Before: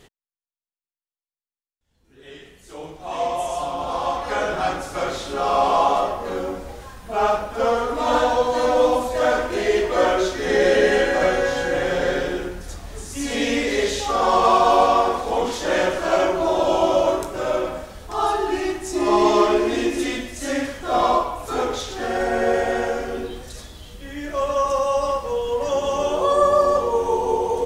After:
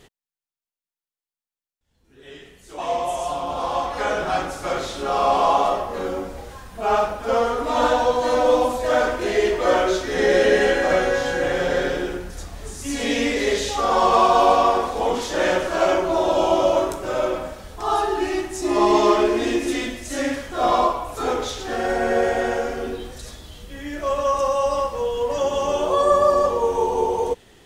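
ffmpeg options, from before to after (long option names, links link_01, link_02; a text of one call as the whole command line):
ffmpeg -i in.wav -filter_complex "[0:a]asplit=2[link_01][link_02];[link_01]atrim=end=2.782[link_03];[link_02]atrim=start=3.088[link_04];[link_03][link_04]acrossfade=duration=0.004:curve1=hsin:curve2=hsin" out.wav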